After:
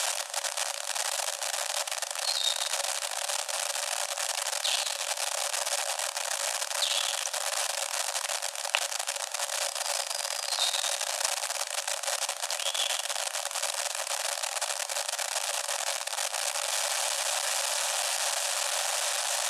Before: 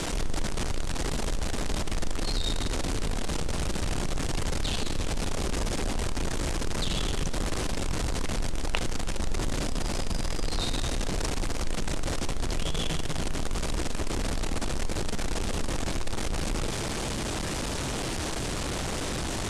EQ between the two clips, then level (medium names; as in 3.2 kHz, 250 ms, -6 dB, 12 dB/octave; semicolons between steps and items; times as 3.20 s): rippled Chebyshev high-pass 550 Hz, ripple 3 dB; treble shelf 6.6 kHz +11.5 dB; band-stop 2.1 kHz, Q 10; +4.5 dB